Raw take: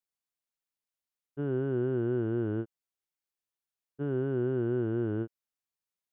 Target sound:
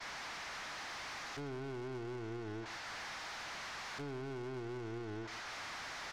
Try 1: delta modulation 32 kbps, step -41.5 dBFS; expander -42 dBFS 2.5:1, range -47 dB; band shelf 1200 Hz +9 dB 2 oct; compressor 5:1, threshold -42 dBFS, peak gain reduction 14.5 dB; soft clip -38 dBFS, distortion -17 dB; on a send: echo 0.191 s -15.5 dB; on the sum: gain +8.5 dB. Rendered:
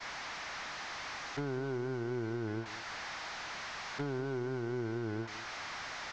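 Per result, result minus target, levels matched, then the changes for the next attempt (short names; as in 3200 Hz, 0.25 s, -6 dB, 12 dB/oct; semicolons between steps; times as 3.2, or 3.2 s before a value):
echo 67 ms late; soft clip: distortion -10 dB
change: echo 0.124 s -15.5 dB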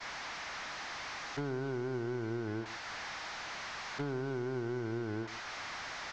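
soft clip: distortion -10 dB
change: soft clip -49.5 dBFS, distortion -6 dB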